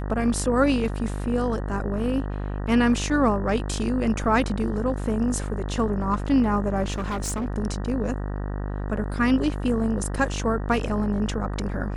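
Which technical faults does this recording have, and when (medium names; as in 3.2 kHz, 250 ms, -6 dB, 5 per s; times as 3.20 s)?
buzz 50 Hz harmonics 38 -29 dBFS
6.92–7.46 s: clipped -24 dBFS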